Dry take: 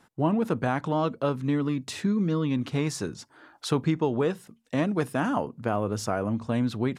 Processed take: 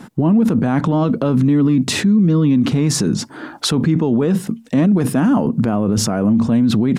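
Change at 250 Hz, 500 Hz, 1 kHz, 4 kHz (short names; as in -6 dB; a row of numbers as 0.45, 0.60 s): +13.5, +6.5, +4.5, +14.0 dB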